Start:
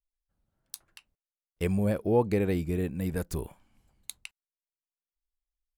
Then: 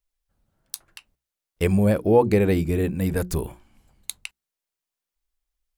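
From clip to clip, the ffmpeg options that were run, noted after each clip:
-af "bandreject=f=60:t=h:w=6,bandreject=f=120:t=h:w=6,bandreject=f=180:t=h:w=6,bandreject=f=240:t=h:w=6,bandreject=f=300:t=h:w=6,bandreject=f=360:t=h:w=6,volume=8dB"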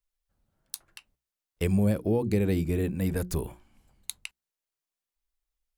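-filter_complex "[0:a]acrossover=split=340|3000[a][b][c];[b]acompressor=threshold=-28dB:ratio=6[d];[a][d][c]amix=inputs=3:normalize=0,volume=-4dB"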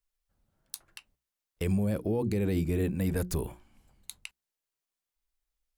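-af "alimiter=limit=-20dB:level=0:latency=1:release=26"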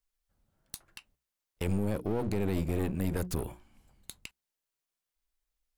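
-af "aeval=exprs='clip(val(0),-1,0.015)':c=same"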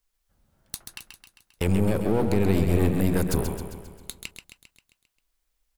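-af "aecho=1:1:133|266|399|532|665|798|931:0.447|0.25|0.14|0.0784|0.0439|0.0246|0.0138,volume=7.5dB"

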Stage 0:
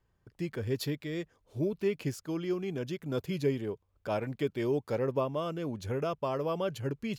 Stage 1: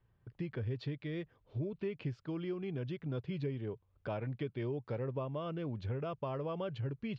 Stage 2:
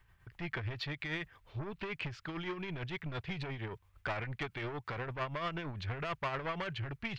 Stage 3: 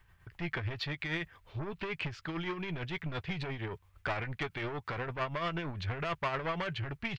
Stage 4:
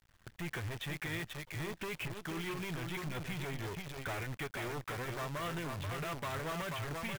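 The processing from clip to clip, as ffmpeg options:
-af "lowpass=f=3.8k:w=0.5412,lowpass=f=3.8k:w=1.3066,equalizer=f=120:t=o:w=0.71:g=8.5,acompressor=threshold=-35dB:ratio=3,volume=-1.5dB"
-af "asoftclip=type=tanh:threshold=-37dB,tremolo=f=8.8:d=0.47,equalizer=f=125:t=o:w=1:g=-8,equalizer=f=250:t=o:w=1:g=-10,equalizer=f=500:t=o:w=1:g=-10,equalizer=f=2k:t=o:w=1:g=6,volume=13dB"
-filter_complex "[0:a]asplit=2[a][b];[b]adelay=12,volume=-14dB[c];[a][c]amix=inputs=2:normalize=0,volume=2.5dB"
-af "aecho=1:1:484:0.501,aresample=8000,asoftclip=type=tanh:threshold=-32.5dB,aresample=44100,acrusher=bits=8:dc=4:mix=0:aa=0.000001,volume=-1dB"

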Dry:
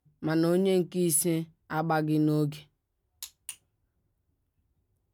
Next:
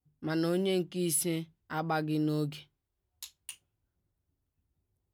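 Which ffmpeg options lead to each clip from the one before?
-af "adynamicequalizer=threshold=0.00398:dfrequency=3200:dqfactor=0.79:tfrequency=3200:tqfactor=0.79:attack=5:release=100:ratio=0.375:range=3.5:mode=boostabove:tftype=bell,volume=-5dB"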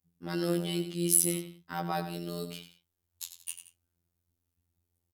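-af "aemphasis=mode=production:type=cd,aecho=1:1:95|176:0.299|0.112,afftfilt=real='hypot(re,im)*cos(PI*b)':imag='0':win_size=2048:overlap=0.75,volume=1.5dB"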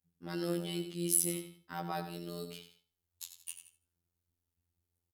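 -af "aecho=1:1:79|158|237:0.158|0.0507|0.0162,volume=-5dB"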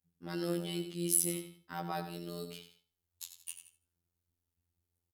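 -af anull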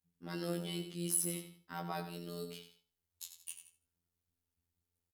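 -filter_complex "[0:a]asoftclip=type=hard:threshold=-19dB,asplit=2[a][b];[b]adelay=16,volume=-9dB[c];[a][c]amix=inputs=2:normalize=0,volume=-2dB"

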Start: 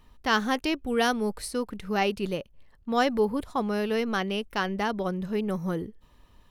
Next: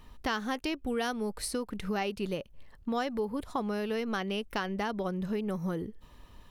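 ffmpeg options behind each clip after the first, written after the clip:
-af "acompressor=threshold=-35dB:ratio=4,volume=4dB"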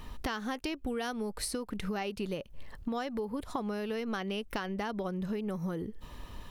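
-af "acompressor=threshold=-42dB:ratio=4,volume=8dB"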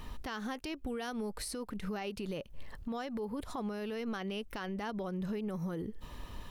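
-af "alimiter=level_in=6.5dB:limit=-24dB:level=0:latency=1:release=47,volume=-6.5dB"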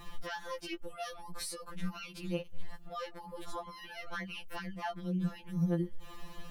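-af "afftfilt=real='re*2.83*eq(mod(b,8),0)':imag='im*2.83*eq(mod(b,8),0)':win_size=2048:overlap=0.75,volume=3dB"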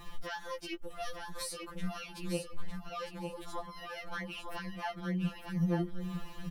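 -af "aecho=1:1:904|1808|2712:0.501|0.0802|0.0128"

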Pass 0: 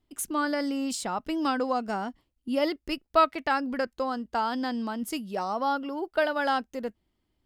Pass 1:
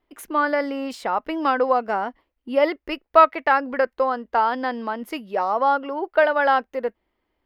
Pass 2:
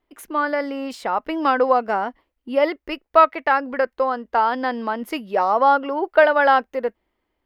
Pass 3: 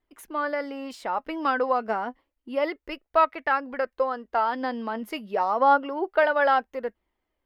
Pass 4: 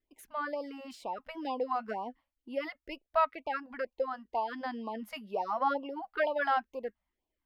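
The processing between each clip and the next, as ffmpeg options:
-af "equalizer=f=125:t=o:w=1:g=-9,equalizer=f=500:t=o:w=1:g=9,equalizer=f=1k:t=o:w=1:g=7,equalizer=f=2k:t=o:w=1:g=9,equalizer=f=8k:t=o:w=1:g=-12,volume=-1dB"
-af "dynaudnorm=f=550:g=5:m=11.5dB,volume=-1dB"
-af "flanger=delay=0.5:depth=4.5:regen=65:speed=0.29:shape=triangular,volume=-1.5dB"
-af "afftfilt=real='re*(1-between(b*sr/1024,350*pow(1700/350,0.5+0.5*sin(2*PI*2.1*pts/sr))/1.41,350*pow(1700/350,0.5+0.5*sin(2*PI*2.1*pts/sr))*1.41))':imag='im*(1-between(b*sr/1024,350*pow(1700/350,0.5+0.5*sin(2*PI*2.1*pts/sr))/1.41,350*pow(1700/350,0.5+0.5*sin(2*PI*2.1*pts/sr))*1.41))':win_size=1024:overlap=0.75,volume=-7dB"

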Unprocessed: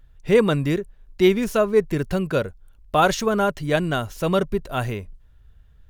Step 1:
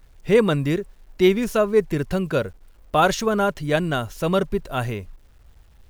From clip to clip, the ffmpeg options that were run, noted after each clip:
-af "acrusher=bits=9:mix=0:aa=0.000001"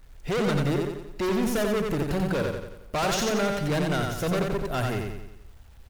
-filter_complex "[0:a]volume=24.5dB,asoftclip=hard,volume=-24.5dB,asplit=2[a][b];[b]aecho=0:1:89|178|267|356|445|534:0.668|0.327|0.16|0.0786|0.0385|0.0189[c];[a][c]amix=inputs=2:normalize=0"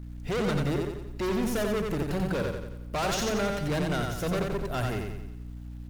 -af "aeval=exprs='val(0)+0.0158*(sin(2*PI*60*n/s)+sin(2*PI*2*60*n/s)/2+sin(2*PI*3*60*n/s)/3+sin(2*PI*4*60*n/s)/4+sin(2*PI*5*60*n/s)/5)':c=same,volume=-3dB"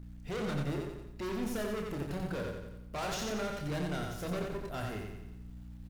-filter_complex "[0:a]asplit=2[a][b];[b]adelay=28,volume=-6dB[c];[a][c]amix=inputs=2:normalize=0,areverse,acompressor=mode=upward:threshold=-33dB:ratio=2.5,areverse,volume=-8.5dB"

